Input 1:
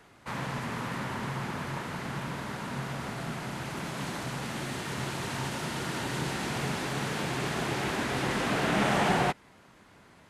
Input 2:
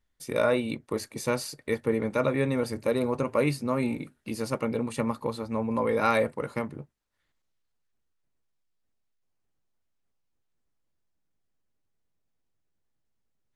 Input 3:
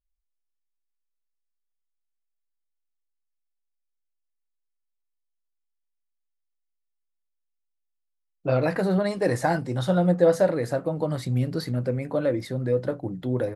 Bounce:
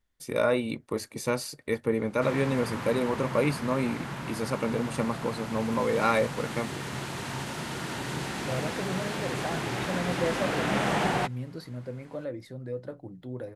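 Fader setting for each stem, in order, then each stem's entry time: -1.0 dB, -0.5 dB, -11.5 dB; 1.95 s, 0.00 s, 0.00 s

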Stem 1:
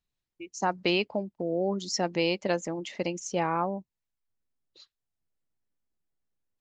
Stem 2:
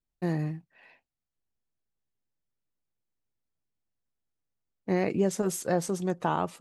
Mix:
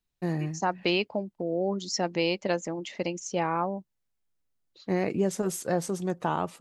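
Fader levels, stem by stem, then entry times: 0.0 dB, -0.5 dB; 0.00 s, 0.00 s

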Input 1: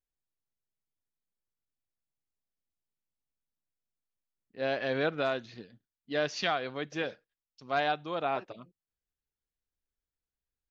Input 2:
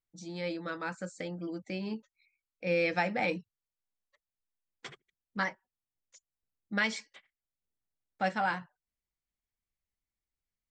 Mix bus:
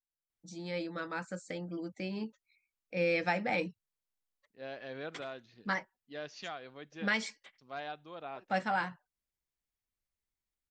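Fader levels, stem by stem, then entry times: -12.5 dB, -1.5 dB; 0.00 s, 0.30 s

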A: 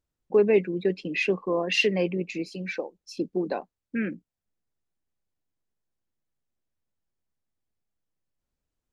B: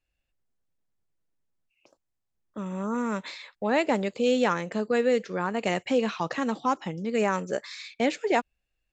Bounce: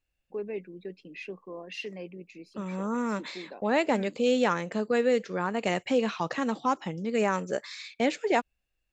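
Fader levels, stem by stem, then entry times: -15.0 dB, -1.0 dB; 0.00 s, 0.00 s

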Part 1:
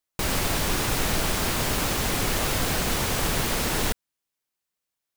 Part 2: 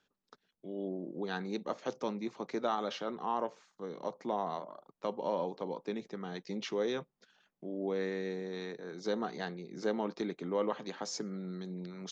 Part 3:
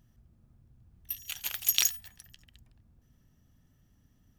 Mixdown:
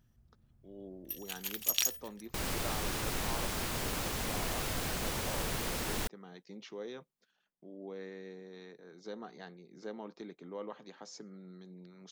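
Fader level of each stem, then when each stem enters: -10.5 dB, -10.0 dB, -4.5 dB; 2.15 s, 0.00 s, 0.00 s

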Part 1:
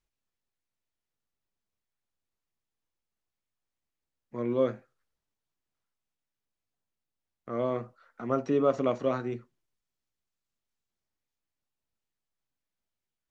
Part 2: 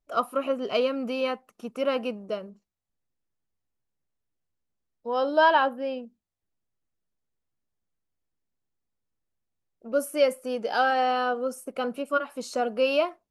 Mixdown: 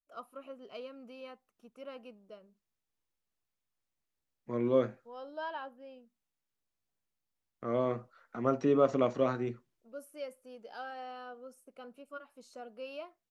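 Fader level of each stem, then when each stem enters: -1.0 dB, -20.0 dB; 0.15 s, 0.00 s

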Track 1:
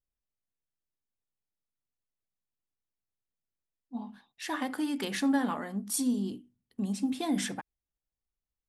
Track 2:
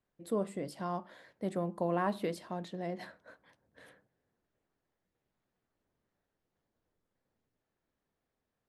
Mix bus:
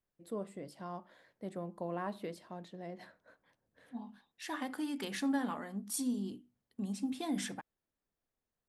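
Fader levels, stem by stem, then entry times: -6.0 dB, -7.0 dB; 0.00 s, 0.00 s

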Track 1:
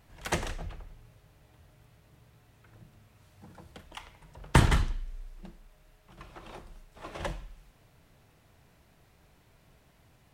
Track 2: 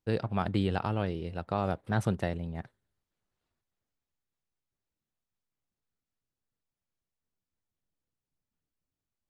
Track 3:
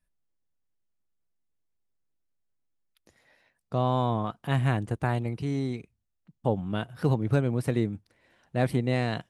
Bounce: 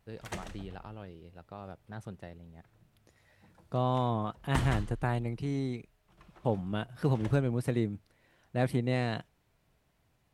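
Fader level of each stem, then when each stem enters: -10.0 dB, -14.5 dB, -3.5 dB; 0.00 s, 0.00 s, 0.00 s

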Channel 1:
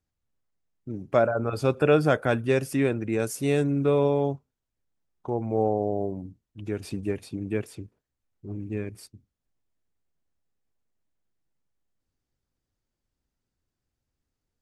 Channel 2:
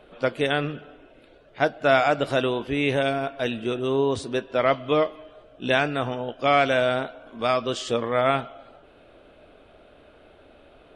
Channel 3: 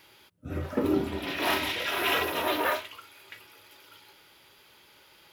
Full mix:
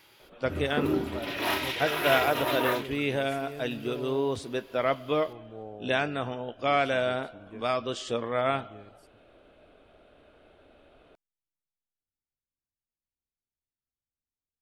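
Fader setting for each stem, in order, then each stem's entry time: -18.0 dB, -5.5 dB, -1.5 dB; 0.00 s, 0.20 s, 0.00 s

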